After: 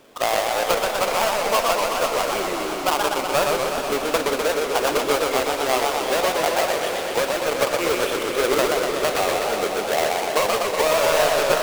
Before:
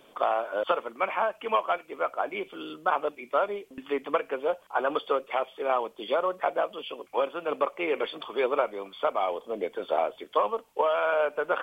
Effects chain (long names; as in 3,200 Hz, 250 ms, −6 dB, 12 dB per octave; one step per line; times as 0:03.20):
each half-wave held at its own peak
echo that builds up and dies away 83 ms, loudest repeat 5, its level −16.5 dB
feedback echo with a swinging delay time 124 ms, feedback 74%, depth 209 cents, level −3 dB